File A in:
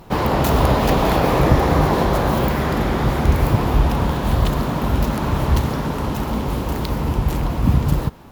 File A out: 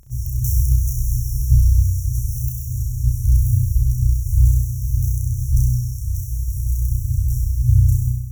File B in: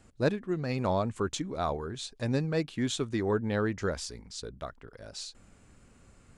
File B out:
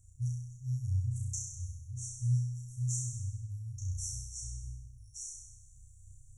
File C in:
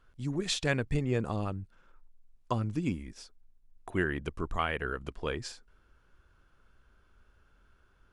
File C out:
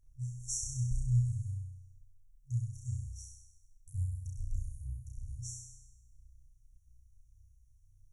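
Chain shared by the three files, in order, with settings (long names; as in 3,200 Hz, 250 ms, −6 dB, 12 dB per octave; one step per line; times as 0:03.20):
brick-wall band-stop 130–5,500 Hz
flutter between parallel walls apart 5.6 metres, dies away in 0.95 s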